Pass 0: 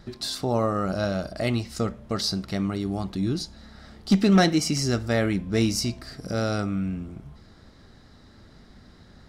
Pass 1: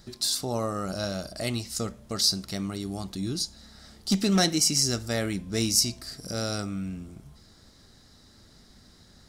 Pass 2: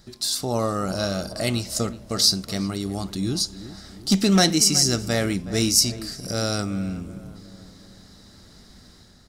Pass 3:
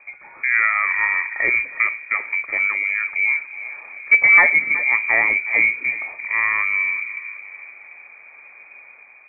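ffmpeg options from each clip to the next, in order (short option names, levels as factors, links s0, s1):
-af "bass=f=250:g=0,treble=f=4000:g=15,volume=0.531"
-filter_complex "[0:a]dynaudnorm=f=150:g=5:m=1.88,asplit=2[s0][s1];[s1]adelay=370,lowpass=f=1500:p=1,volume=0.2,asplit=2[s2][s3];[s3]adelay=370,lowpass=f=1500:p=1,volume=0.53,asplit=2[s4][s5];[s5]adelay=370,lowpass=f=1500:p=1,volume=0.53,asplit=2[s6][s7];[s7]adelay=370,lowpass=f=1500:p=1,volume=0.53,asplit=2[s8][s9];[s9]adelay=370,lowpass=f=1500:p=1,volume=0.53[s10];[s0][s2][s4][s6][s8][s10]amix=inputs=6:normalize=0"
-af "lowpass=f=2100:t=q:w=0.5098,lowpass=f=2100:t=q:w=0.6013,lowpass=f=2100:t=q:w=0.9,lowpass=f=2100:t=q:w=2.563,afreqshift=-2500,volume=2"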